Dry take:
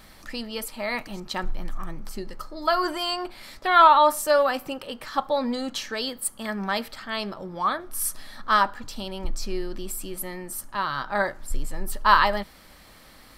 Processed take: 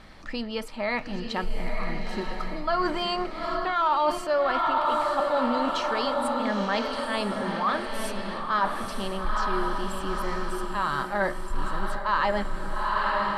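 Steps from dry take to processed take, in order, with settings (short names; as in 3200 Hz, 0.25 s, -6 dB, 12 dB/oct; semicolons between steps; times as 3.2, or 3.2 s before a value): diffused feedback echo 0.913 s, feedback 47%, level -4.5 dB; in parallel at -10 dB: hard clip -18 dBFS, distortion -9 dB; on the sum: air absorption 60 m; reverse; compressor 5:1, threshold -21 dBFS, peak gain reduction 11 dB; reverse; high shelf 5300 Hz -9 dB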